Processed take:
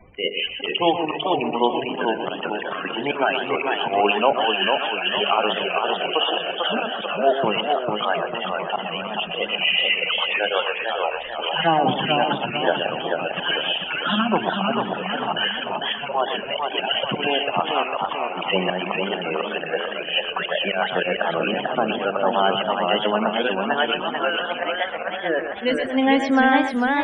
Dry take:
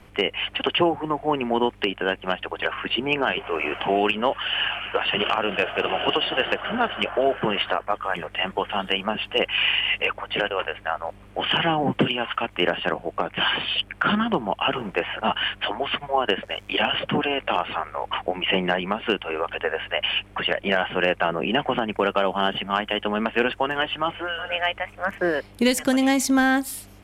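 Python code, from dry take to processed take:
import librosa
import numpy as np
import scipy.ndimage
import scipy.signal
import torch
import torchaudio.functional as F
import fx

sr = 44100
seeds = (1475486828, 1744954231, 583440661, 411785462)

p1 = scipy.signal.sosfilt(scipy.signal.butter(2, 9900.0, 'lowpass', fs=sr, output='sos'), x)
p2 = fx.high_shelf_res(p1, sr, hz=4500.0, db=-10.0, q=1.5)
p3 = fx.hum_notches(p2, sr, base_hz=50, count=9)
p4 = fx.spec_topn(p3, sr, count=32)
p5 = fx.auto_swell(p4, sr, attack_ms=112.0)
p6 = fx.peak_eq(p5, sr, hz=720.0, db=5.5, octaves=1.3)
p7 = p6 + fx.echo_feedback(p6, sr, ms=123, feedback_pct=16, wet_db=-8.5, dry=0)
y = fx.echo_warbled(p7, sr, ms=445, feedback_pct=47, rate_hz=2.8, cents=161, wet_db=-4.0)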